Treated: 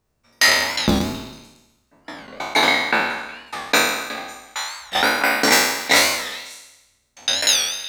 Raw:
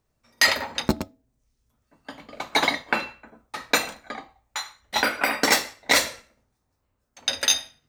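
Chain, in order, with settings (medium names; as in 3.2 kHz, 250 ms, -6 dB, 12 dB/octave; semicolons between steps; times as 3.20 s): spectral sustain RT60 1.00 s; repeats whose band climbs or falls 182 ms, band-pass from 1.2 kHz, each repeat 1.4 oct, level -12 dB; warped record 45 rpm, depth 160 cents; trim +1 dB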